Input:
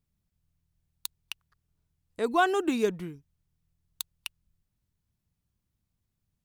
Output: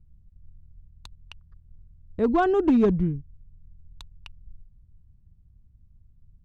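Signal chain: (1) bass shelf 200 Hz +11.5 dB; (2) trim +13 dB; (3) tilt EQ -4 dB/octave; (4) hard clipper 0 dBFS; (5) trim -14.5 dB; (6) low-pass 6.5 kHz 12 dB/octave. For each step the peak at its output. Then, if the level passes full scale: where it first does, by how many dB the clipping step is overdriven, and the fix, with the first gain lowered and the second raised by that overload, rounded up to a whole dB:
-10.0 dBFS, +3.0 dBFS, +6.5 dBFS, 0.0 dBFS, -14.5 dBFS, -14.5 dBFS; step 2, 6.5 dB; step 2 +6 dB, step 5 -7.5 dB

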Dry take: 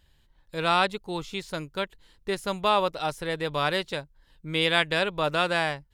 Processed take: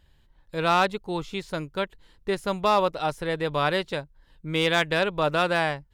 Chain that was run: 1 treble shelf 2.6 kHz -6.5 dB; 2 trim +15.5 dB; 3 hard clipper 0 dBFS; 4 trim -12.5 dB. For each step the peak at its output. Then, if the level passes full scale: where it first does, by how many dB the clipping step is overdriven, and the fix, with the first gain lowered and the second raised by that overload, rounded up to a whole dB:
-11.0 dBFS, +4.5 dBFS, 0.0 dBFS, -12.5 dBFS; step 2, 4.5 dB; step 2 +10.5 dB, step 4 -7.5 dB

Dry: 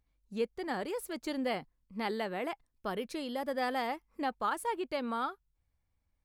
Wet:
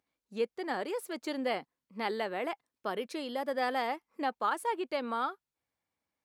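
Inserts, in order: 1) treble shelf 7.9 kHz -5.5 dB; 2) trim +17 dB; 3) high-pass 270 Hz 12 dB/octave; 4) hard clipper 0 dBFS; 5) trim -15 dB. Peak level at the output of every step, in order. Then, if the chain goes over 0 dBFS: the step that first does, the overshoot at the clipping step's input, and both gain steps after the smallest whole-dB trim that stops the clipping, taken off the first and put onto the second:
-21.0 dBFS, -4.0 dBFS, -3.0 dBFS, -3.0 dBFS, -18.0 dBFS; nothing clips

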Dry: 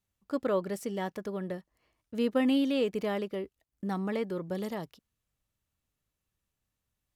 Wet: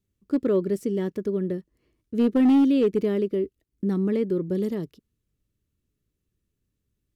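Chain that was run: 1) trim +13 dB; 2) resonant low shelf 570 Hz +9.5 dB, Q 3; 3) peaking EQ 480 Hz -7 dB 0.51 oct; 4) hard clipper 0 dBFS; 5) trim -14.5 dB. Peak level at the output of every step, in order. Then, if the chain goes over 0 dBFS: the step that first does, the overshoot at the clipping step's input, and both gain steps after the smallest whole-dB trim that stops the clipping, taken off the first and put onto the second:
-3.0 dBFS, +7.0 dBFS, +4.5 dBFS, 0.0 dBFS, -14.5 dBFS; step 2, 4.5 dB; step 1 +8 dB, step 5 -9.5 dB

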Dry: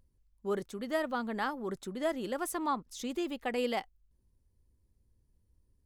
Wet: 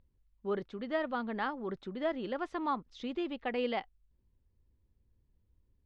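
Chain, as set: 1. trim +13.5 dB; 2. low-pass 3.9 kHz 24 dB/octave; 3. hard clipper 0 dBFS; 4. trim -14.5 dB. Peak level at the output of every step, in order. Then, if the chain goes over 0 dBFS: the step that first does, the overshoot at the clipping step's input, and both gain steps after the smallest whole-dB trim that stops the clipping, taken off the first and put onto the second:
-4.5 dBFS, -5.0 dBFS, -5.0 dBFS, -19.5 dBFS; nothing clips

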